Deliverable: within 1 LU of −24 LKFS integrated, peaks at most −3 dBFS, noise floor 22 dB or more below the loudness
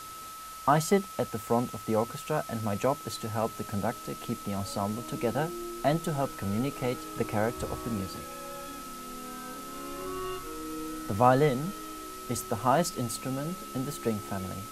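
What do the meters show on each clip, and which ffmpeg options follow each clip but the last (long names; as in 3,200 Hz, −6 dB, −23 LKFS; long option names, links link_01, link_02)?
interfering tone 1,300 Hz; level of the tone −42 dBFS; background noise floor −43 dBFS; target noise floor −54 dBFS; integrated loudness −31.5 LKFS; sample peak −8.0 dBFS; target loudness −24.0 LKFS
→ -af "bandreject=frequency=1300:width=30"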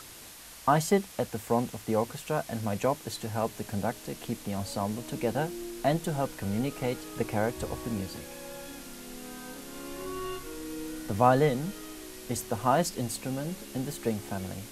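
interfering tone none found; background noise floor −47 dBFS; target noise floor −53 dBFS
→ -af "afftdn=noise_reduction=6:noise_floor=-47"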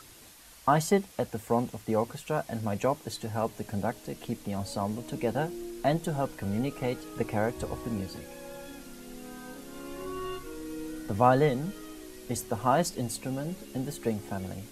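background noise floor −52 dBFS; target noise floor −53 dBFS
→ -af "afftdn=noise_reduction=6:noise_floor=-52"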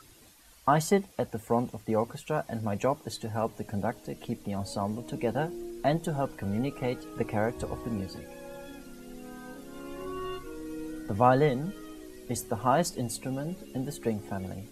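background noise floor −55 dBFS; integrated loudness −31.0 LKFS; sample peak −8.5 dBFS; target loudness −24.0 LKFS
→ -af "volume=7dB,alimiter=limit=-3dB:level=0:latency=1"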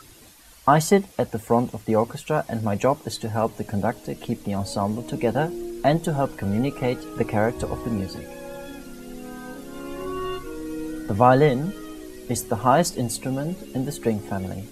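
integrated loudness −24.0 LKFS; sample peak −3.0 dBFS; background noise floor −48 dBFS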